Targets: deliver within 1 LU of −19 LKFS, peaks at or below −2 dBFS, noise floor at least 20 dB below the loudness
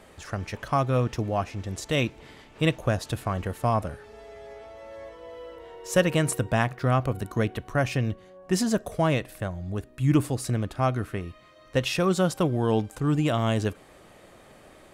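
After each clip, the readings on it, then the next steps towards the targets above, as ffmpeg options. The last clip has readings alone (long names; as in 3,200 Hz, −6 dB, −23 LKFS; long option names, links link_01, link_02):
integrated loudness −26.5 LKFS; sample peak −6.5 dBFS; target loudness −19.0 LKFS
→ -af "volume=7.5dB,alimiter=limit=-2dB:level=0:latency=1"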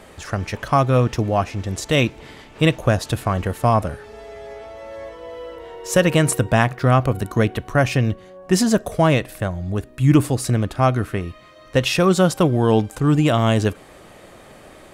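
integrated loudness −19.5 LKFS; sample peak −2.0 dBFS; background noise floor −45 dBFS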